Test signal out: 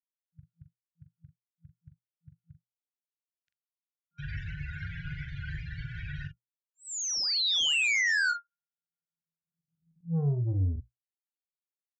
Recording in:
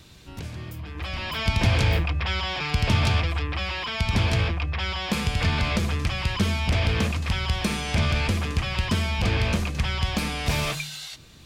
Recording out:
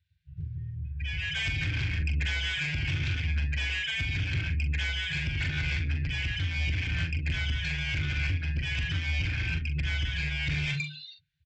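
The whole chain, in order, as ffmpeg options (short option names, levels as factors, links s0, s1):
-filter_complex "[0:a]highpass=42,bandreject=f=60:t=h:w=6,bandreject=f=120:t=h:w=6,bandreject=f=180:t=h:w=6,afftdn=nr=34:nf=-31,lowpass=2900,afftfilt=real='re*(1-between(b*sr/4096,170,1400))':imag='im*(1-between(b*sr/4096,170,1400))':win_size=4096:overlap=0.75,lowshelf=f=140:g=-6.5,alimiter=limit=0.0668:level=0:latency=1:release=170,aresample=16000,asoftclip=type=tanh:threshold=0.0266,aresample=44100,asplit=2[s0][s1];[s1]adelay=42,volume=0.422[s2];[s0][s2]amix=inputs=2:normalize=0,volume=2"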